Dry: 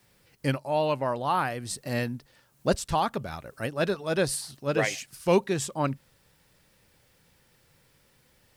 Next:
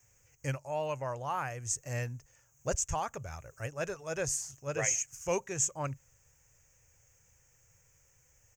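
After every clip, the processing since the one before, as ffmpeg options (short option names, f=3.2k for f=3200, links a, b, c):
-af "firequalizer=gain_entry='entry(110,0);entry(200,-19);entry(490,-8);entry(850,-9);entry(2500,-6);entry(4000,-24);entry(6500,13);entry(9600,-15);entry(15000,-3)':delay=0.05:min_phase=1"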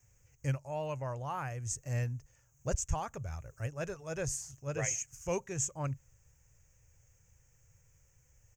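-af "lowshelf=f=210:g=10.5,volume=-4.5dB"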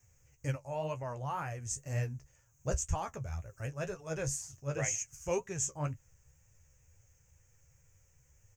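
-af "flanger=delay=9.4:depth=6.3:regen=35:speed=2:shape=triangular,volume=4dB"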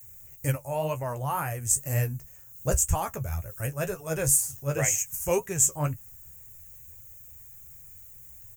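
-af "aexciter=amount=9.7:drive=6.8:freq=8.7k,volume=7.5dB"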